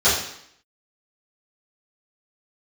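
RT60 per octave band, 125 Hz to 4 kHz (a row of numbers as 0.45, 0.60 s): 0.60, 0.75, 0.65, 0.70, 0.70, 0.70 s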